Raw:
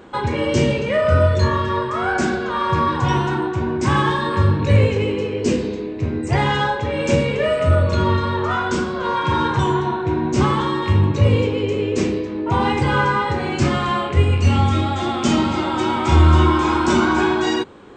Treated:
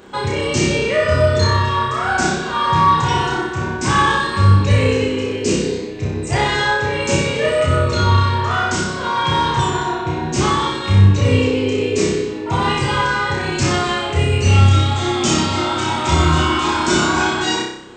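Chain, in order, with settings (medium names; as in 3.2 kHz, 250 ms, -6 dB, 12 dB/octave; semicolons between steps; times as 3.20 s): treble shelf 3.6 kHz +9.5 dB; de-hum 57.8 Hz, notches 32; on a send: flutter echo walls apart 5.3 m, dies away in 0.65 s; on the sum: trim -1 dB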